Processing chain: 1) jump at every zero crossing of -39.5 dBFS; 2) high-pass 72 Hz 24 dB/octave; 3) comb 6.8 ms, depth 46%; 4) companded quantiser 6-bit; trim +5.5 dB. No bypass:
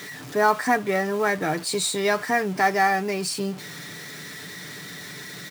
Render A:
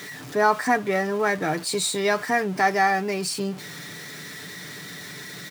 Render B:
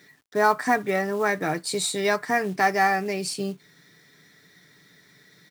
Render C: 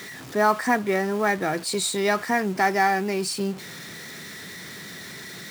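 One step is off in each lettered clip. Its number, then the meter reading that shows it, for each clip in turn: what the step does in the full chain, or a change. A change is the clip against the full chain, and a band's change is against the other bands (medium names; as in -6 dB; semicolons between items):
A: 4, distortion -25 dB; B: 1, distortion -16 dB; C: 3, 250 Hz band +2.0 dB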